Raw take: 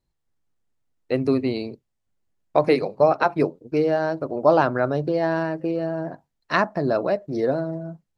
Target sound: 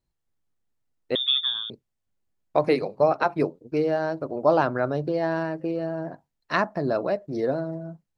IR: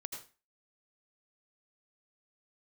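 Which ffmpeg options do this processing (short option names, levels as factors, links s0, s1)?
-filter_complex "[0:a]asettb=1/sr,asplit=3[s0][s1][s2];[s0]atrim=end=1.154[s3];[s1]atrim=start=1.15:end=1.7,asetpts=PTS-STARTPTS,afade=t=in:d=0.004:c=qsin,afade=t=out:st=0.546:d=0.004:c=qsin,lowpass=f=3200:t=q:w=0.5098,lowpass=f=3200:t=q:w=0.6013,lowpass=f=3200:t=q:w=0.9,lowpass=f=3200:t=q:w=2.563,afreqshift=-3800[s4];[s2]atrim=start=1.696[s5];[s3][s4]acrossfade=d=0.004:c1=hsin:c2=qsin[s6];[s6][s5]acrossfade=d=0.004:c1=qsin:c2=hsin,volume=0.708"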